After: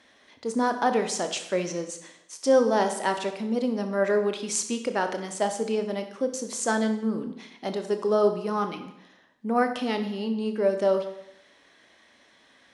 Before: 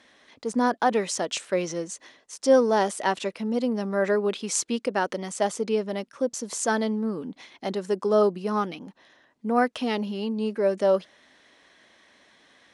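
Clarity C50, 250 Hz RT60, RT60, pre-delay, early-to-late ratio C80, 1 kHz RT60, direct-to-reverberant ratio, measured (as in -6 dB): 9.5 dB, 0.75 s, 0.75 s, 22 ms, 12.0 dB, 0.75 s, 6.5 dB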